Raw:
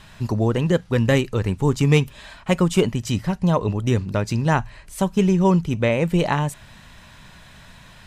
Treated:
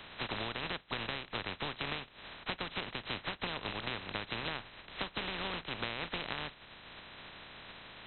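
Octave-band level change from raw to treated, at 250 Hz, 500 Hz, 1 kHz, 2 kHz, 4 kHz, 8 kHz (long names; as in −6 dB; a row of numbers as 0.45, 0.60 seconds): −25.5 dB, −22.5 dB, −14.0 dB, −9.0 dB, −4.5 dB, below −40 dB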